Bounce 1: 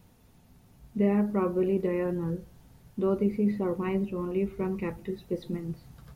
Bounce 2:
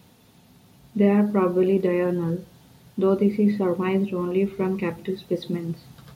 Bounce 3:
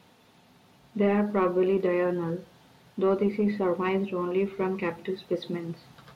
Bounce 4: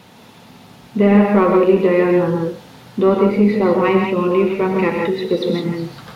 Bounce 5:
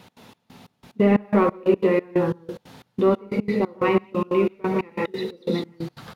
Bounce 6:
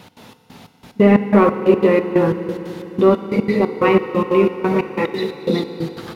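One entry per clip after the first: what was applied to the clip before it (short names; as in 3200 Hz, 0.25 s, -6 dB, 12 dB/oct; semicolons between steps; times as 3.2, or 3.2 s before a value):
HPF 120 Hz 12 dB/oct; bell 3700 Hz +6 dB 0.87 oct; gain +6.5 dB
overdrive pedal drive 13 dB, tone 2300 Hz, clips at -7.5 dBFS; gain -5 dB
in parallel at -2 dB: compressor, threshold -32 dBFS, peak gain reduction 12.5 dB; on the sum: non-linear reverb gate 0.19 s rising, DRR 1.5 dB; gain +7.5 dB
step gate "x.xx..xx.." 181 bpm -24 dB; gain -4.5 dB
FDN reverb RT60 3.9 s, high-frequency decay 1×, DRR 9.5 dB; gain +6 dB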